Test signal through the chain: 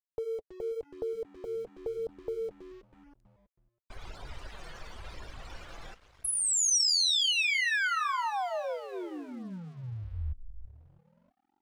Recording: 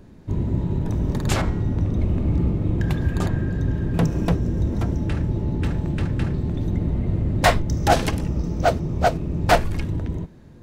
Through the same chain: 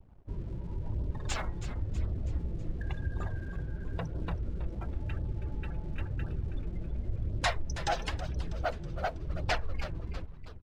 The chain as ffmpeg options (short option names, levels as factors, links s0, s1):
-filter_complex "[0:a]acompressor=threshold=0.0316:ratio=2,afftdn=nr=34:nf=-40,lowpass=6900,highshelf=f=5000:g=9,asplit=2[s0][s1];[s1]asplit=6[s2][s3][s4][s5][s6][s7];[s2]adelay=323,afreqshift=-84,volume=0.251[s8];[s3]adelay=646,afreqshift=-168,volume=0.133[s9];[s4]adelay=969,afreqshift=-252,volume=0.0708[s10];[s5]adelay=1292,afreqshift=-336,volume=0.0376[s11];[s6]adelay=1615,afreqshift=-420,volume=0.0197[s12];[s7]adelay=1938,afreqshift=-504,volume=0.0105[s13];[s8][s9][s10][s11][s12][s13]amix=inputs=6:normalize=0[s14];[s0][s14]amix=inputs=2:normalize=0,acontrast=71,aeval=exprs='sgn(val(0))*max(abs(val(0))-0.00473,0)':c=same,equalizer=f=220:t=o:w=2.2:g=-13,flanger=delay=0.2:depth=5.8:regen=-34:speed=0.95:shape=sinusoidal,volume=0.631"